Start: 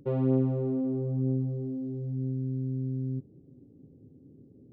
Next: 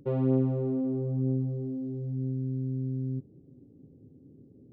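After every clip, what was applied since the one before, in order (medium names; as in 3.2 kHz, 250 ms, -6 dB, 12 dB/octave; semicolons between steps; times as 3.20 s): no audible change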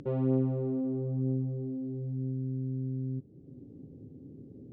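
in parallel at +0.5 dB: upward compressor, threshold -30 dBFS; on the sum: distance through air 77 m; trim -8.5 dB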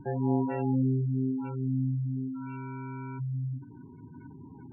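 sample-and-hold 36×; gated-style reverb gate 450 ms rising, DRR 2.5 dB; spectral gate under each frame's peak -15 dB strong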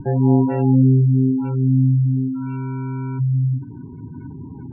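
tilt EQ -2.5 dB/octave; trim +7 dB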